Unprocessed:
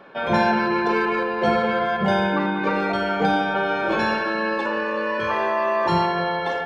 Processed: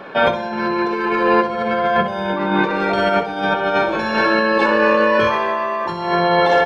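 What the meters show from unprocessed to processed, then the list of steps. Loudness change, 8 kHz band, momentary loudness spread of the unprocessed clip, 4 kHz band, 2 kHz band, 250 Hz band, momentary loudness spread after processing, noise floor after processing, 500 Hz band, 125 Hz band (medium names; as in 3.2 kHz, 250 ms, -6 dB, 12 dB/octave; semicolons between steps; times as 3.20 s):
+4.5 dB, no reading, 3 LU, +5.0 dB, +4.5 dB, +3.0 dB, 6 LU, -25 dBFS, +5.5 dB, +1.0 dB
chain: compressor with a negative ratio -25 dBFS, ratio -0.5; on a send: feedback delay 63 ms, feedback 38%, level -10 dB; on the sum: trim +7.5 dB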